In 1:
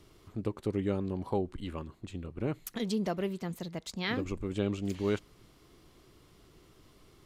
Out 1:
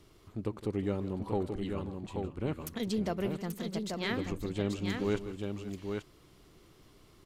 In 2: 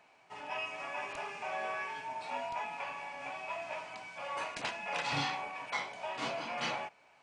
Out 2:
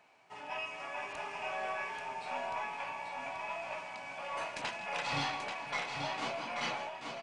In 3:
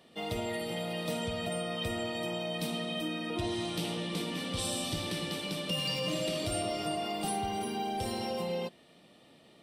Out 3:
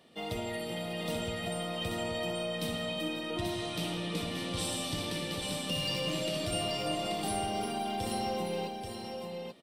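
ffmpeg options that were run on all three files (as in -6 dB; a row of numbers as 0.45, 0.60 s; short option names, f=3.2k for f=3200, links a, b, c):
-af "aeval=exprs='0.133*(cos(1*acos(clip(val(0)/0.133,-1,1)))-cos(1*PI/2))+0.00422*(cos(4*acos(clip(val(0)/0.133,-1,1)))-cos(4*PI/2))+0.000944*(cos(5*acos(clip(val(0)/0.133,-1,1)))-cos(5*PI/2))':c=same,aecho=1:1:162|535|834:0.178|0.141|0.562,volume=-1.5dB"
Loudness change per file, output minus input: -0.5, 0.0, 0.0 LU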